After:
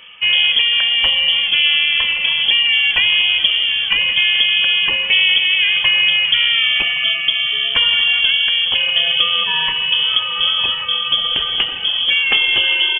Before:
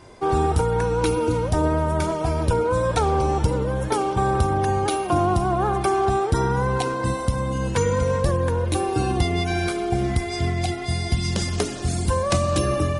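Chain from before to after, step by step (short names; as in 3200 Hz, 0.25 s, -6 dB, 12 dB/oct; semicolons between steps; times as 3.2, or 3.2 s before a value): HPF 85 Hz; echo 1.121 s -15 dB; inverted band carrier 3300 Hz; gain +6.5 dB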